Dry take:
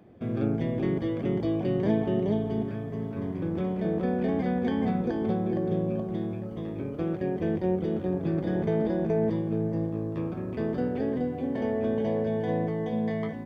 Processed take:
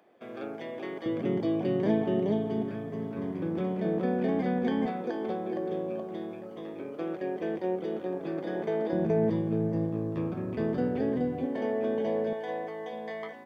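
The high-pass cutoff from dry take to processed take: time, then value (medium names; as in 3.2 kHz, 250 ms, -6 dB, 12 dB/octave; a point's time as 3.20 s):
580 Hz
from 1.06 s 170 Hz
from 4.86 s 370 Hz
from 8.93 s 87 Hz
from 11.46 s 270 Hz
from 12.33 s 600 Hz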